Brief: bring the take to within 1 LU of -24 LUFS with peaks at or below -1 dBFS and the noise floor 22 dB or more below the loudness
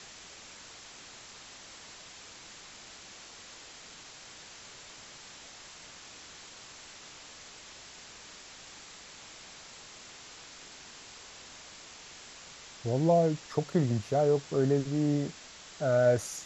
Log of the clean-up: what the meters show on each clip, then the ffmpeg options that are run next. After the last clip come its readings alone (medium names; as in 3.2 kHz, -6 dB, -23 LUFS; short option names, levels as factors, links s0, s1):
noise floor -50 dBFS; noise floor target -51 dBFS; loudness -28.5 LUFS; peak level -13.5 dBFS; loudness target -24.0 LUFS
-> -af "afftdn=nr=6:nf=-50"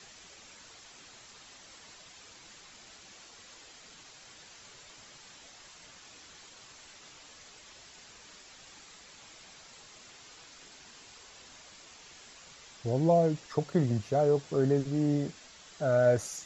noise floor -54 dBFS; loudness -28.5 LUFS; peak level -13.5 dBFS; loudness target -24.0 LUFS
-> -af "volume=1.68"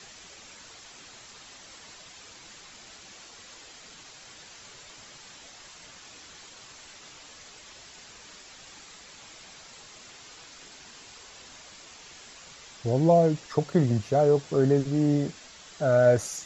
loudness -24.0 LUFS; peak level -9.0 dBFS; noise floor -49 dBFS